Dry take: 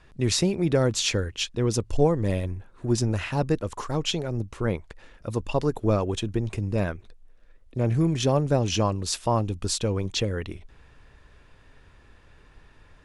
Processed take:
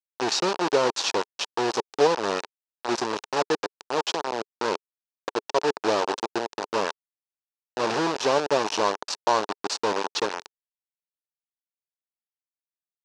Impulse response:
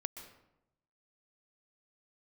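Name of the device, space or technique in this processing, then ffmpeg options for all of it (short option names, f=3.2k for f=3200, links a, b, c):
hand-held game console: -af "highpass=f=57:p=1,acrusher=bits=3:mix=0:aa=0.000001,highpass=400,equalizer=f=420:t=q:w=4:g=4,equalizer=f=910:t=q:w=4:g=6,equalizer=f=2.1k:t=q:w=4:g=-7,equalizer=f=3.3k:t=q:w=4:g=-4,lowpass=f=5.7k:w=0.5412,lowpass=f=5.7k:w=1.3066,highshelf=f=8.2k:g=5.5,volume=1dB"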